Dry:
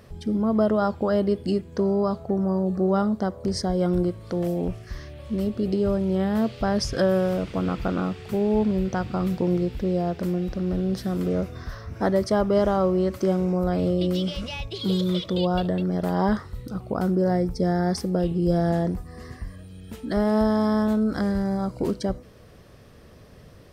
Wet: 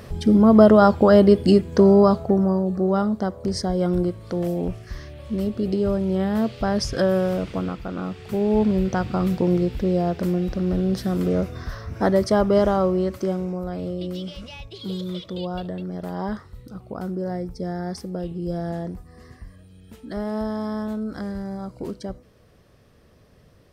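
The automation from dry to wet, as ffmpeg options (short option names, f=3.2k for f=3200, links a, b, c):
-af "volume=18.5dB,afade=t=out:st=1.99:d=0.66:silence=0.398107,afade=t=out:st=7.52:d=0.31:silence=0.421697,afade=t=in:st=7.83:d=0.82:silence=0.334965,afade=t=out:st=12.53:d=1.11:silence=0.354813"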